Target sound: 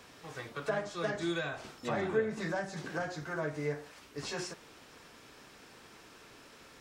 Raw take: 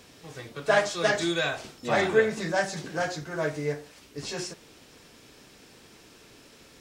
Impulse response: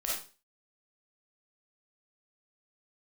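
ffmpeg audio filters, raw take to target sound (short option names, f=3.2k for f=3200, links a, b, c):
-filter_complex "[0:a]equalizer=f=1.2k:t=o:w=1.8:g=8,acrossover=split=390[a][b];[b]acompressor=threshold=-31dB:ratio=6[c];[a][c]amix=inputs=2:normalize=0,volume=-5dB"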